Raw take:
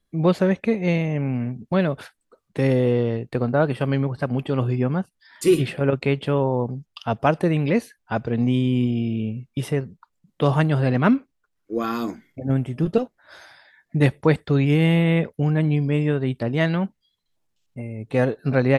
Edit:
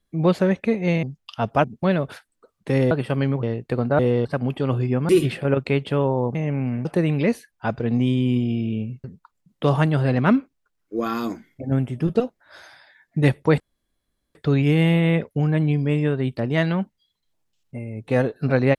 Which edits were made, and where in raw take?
0:01.03–0:01.53: swap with 0:06.71–0:07.32
0:02.80–0:03.06: swap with 0:03.62–0:04.14
0:04.98–0:05.45: remove
0:09.51–0:09.82: remove
0:14.38: splice in room tone 0.75 s

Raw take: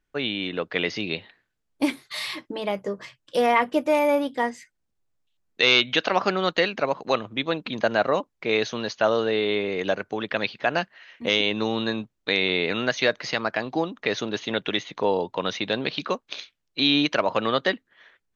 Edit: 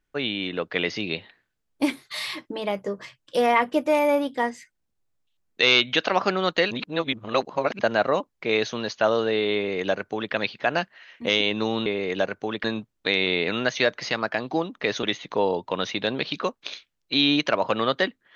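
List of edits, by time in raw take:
0:06.71–0:07.79: reverse
0:09.55–0:10.33: duplicate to 0:11.86
0:14.25–0:14.69: remove

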